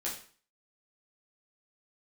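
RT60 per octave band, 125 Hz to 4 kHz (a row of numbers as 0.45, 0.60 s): 0.45, 0.45, 0.45, 0.45, 0.45, 0.40 s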